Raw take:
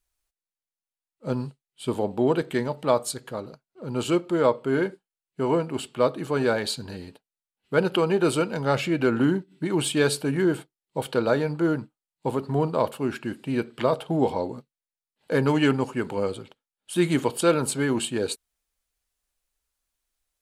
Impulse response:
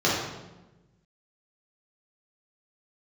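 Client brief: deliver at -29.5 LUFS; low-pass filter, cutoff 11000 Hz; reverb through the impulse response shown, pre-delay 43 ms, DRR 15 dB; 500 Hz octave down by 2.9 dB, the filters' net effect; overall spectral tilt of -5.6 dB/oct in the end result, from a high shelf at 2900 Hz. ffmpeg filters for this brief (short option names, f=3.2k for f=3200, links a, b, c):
-filter_complex "[0:a]lowpass=11k,equalizer=f=500:t=o:g=-3.5,highshelf=f=2.9k:g=-4.5,asplit=2[a][b];[1:a]atrim=start_sample=2205,adelay=43[c];[b][c]afir=irnorm=-1:irlink=0,volume=-31.5dB[d];[a][d]amix=inputs=2:normalize=0,volume=-2.5dB"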